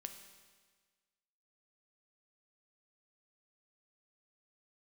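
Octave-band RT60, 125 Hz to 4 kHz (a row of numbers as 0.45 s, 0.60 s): 1.5 s, 1.5 s, 1.5 s, 1.5 s, 1.5 s, 1.5 s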